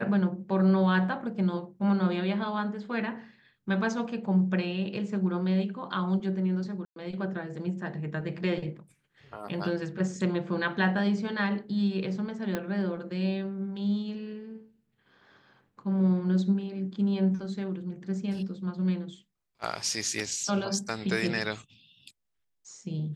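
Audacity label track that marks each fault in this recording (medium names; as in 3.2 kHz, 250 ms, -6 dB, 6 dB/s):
6.850000	6.960000	dropout 112 ms
12.550000	12.550000	pop -16 dBFS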